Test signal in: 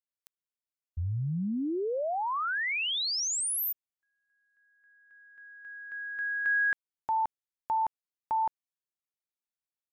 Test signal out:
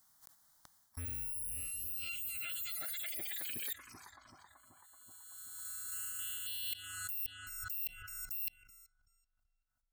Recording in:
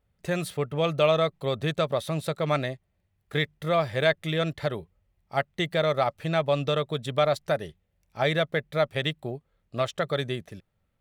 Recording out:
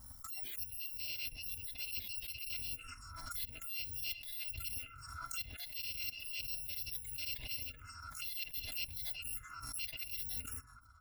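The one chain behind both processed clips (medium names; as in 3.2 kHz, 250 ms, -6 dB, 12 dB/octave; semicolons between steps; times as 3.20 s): bit-reversed sample order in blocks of 256 samples; on a send: filtered feedback delay 381 ms, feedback 62%, low-pass 3 kHz, level -17 dB; on the sum: dynamic bell 400 Hz, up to -4 dB, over -53 dBFS, Q 1.1; touch-sensitive phaser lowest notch 440 Hz, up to 1.3 kHz, full sweep at -26.5 dBFS; reverse; compression 12:1, threshold -40 dBFS; reverse; spectral noise reduction 14 dB; swell ahead of each attack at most 34 dB/s; trim +1.5 dB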